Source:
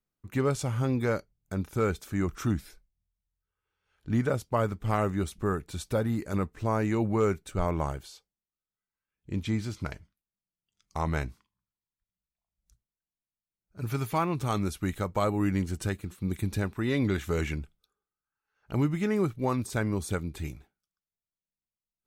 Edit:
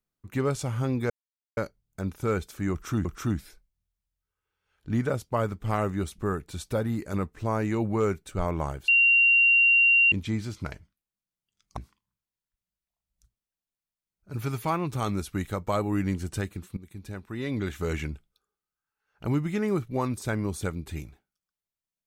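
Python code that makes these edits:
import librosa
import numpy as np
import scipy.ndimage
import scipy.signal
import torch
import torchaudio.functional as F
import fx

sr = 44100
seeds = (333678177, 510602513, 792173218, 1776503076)

y = fx.edit(x, sr, fx.insert_silence(at_s=1.1, length_s=0.47),
    fx.repeat(start_s=2.25, length_s=0.33, count=2),
    fx.bleep(start_s=8.08, length_s=1.24, hz=2760.0, db=-16.0),
    fx.cut(start_s=10.97, length_s=0.28),
    fx.fade_in_from(start_s=16.25, length_s=1.24, floor_db=-19.0), tone=tone)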